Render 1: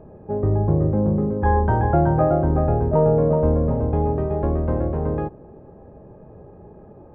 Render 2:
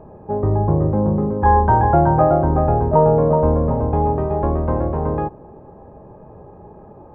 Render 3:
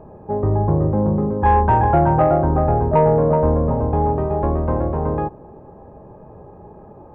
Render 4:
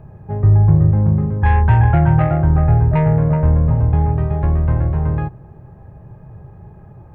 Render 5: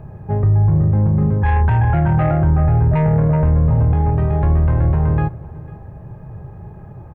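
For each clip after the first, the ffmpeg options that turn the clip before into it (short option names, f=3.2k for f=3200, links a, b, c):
-af "equalizer=f=960:w=1.9:g=8.5,volume=1.5dB"
-af "asoftclip=type=tanh:threshold=-4dB"
-af "equalizer=f=125:t=o:w=1:g=8,equalizer=f=250:t=o:w=1:g=-11,equalizer=f=500:t=o:w=1:g=-11,equalizer=f=1k:t=o:w=1:g=-10,equalizer=f=2k:t=o:w=1:g=4,volume=5dB"
-af "alimiter=limit=-12.5dB:level=0:latency=1:release=20,aecho=1:1:498:0.0891,volume=4dB"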